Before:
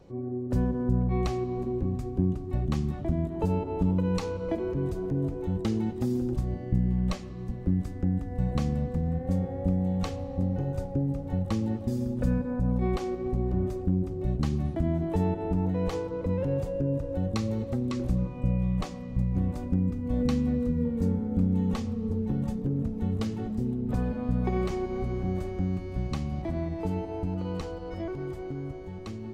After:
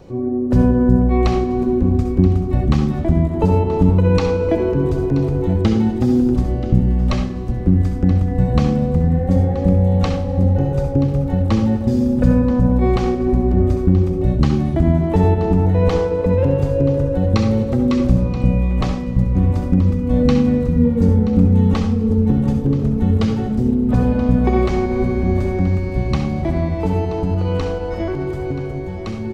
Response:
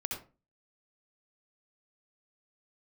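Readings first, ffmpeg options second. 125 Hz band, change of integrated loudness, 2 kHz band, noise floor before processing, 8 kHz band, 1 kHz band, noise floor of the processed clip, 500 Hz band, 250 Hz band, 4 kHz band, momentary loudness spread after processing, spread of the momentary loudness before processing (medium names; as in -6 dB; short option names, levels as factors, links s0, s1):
+12.5 dB, +12.5 dB, +13.0 dB, -38 dBFS, no reading, +12.5 dB, -23 dBFS, +13.0 dB, +12.0 dB, +11.0 dB, 5 LU, 5 LU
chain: -filter_complex "[0:a]asplit=2[s0][s1];[1:a]atrim=start_sample=2205[s2];[s1][s2]afir=irnorm=-1:irlink=0,volume=0.944[s3];[s0][s3]amix=inputs=2:normalize=0,acrossover=split=5900[s4][s5];[s5]acompressor=threshold=0.001:ratio=4:attack=1:release=60[s6];[s4][s6]amix=inputs=2:normalize=0,aecho=1:1:979:0.178,volume=2.11"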